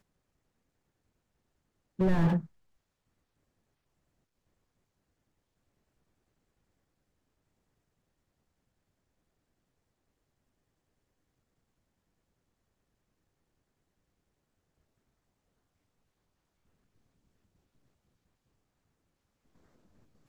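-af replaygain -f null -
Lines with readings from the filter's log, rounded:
track_gain = +55.5 dB
track_peak = 0.133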